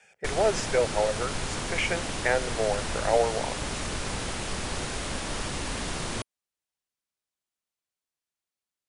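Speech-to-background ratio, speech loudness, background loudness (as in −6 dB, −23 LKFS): 3.5 dB, −28.5 LKFS, −32.0 LKFS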